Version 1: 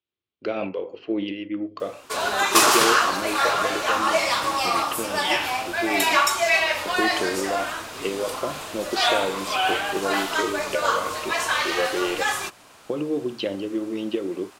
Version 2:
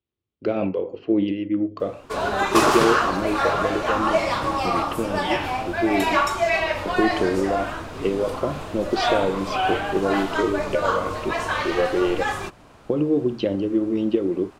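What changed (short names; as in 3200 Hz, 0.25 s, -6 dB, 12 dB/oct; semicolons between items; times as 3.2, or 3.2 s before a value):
speech: remove air absorption 93 m; master: add tilt -3.5 dB/oct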